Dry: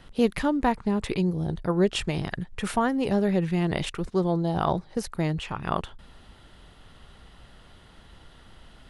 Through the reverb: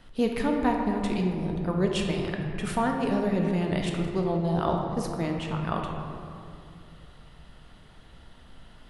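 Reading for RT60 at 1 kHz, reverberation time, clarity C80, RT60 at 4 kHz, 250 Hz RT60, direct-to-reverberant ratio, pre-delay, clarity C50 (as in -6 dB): 2.4 s, 2.6 s, 4.0 dB, 1.3 s, 3.2 s, 1.0 dB, 3 ms, 3.0 dB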